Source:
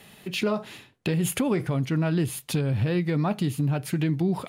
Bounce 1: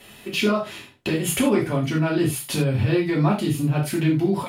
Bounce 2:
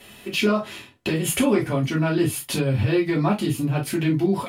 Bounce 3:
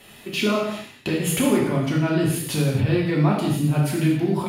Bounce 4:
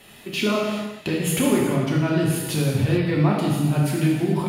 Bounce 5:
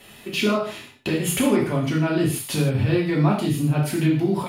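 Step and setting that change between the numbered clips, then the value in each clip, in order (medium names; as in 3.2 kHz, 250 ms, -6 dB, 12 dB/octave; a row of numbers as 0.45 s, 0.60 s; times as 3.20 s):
gated-style reverb, gate: 120 ms, 80 ms, 300 ms, 470 ms, 190 ms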